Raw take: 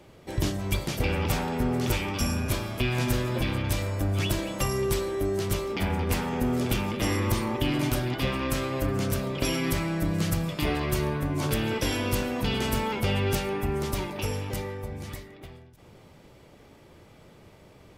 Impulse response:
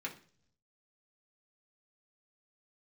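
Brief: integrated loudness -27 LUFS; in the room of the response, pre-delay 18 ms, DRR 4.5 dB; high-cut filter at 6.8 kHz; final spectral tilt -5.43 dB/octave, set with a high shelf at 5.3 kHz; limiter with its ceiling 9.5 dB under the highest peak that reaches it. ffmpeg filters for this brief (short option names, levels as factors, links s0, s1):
-filter_complex "[0:a]lowpass=6800,highshelf=f=5300:g=-8,alimiter=limit=0.0668:level=0:latency=1,asplit=2[s0][s1];[1:a]atrim=start_sample=2205,adelay=18[s2];[s1][s2]afir=irnorm=-1:irlink=0,volume=0.531[s3];[s0][s3]amix=inputs=2:normalize=0,volume=1.68"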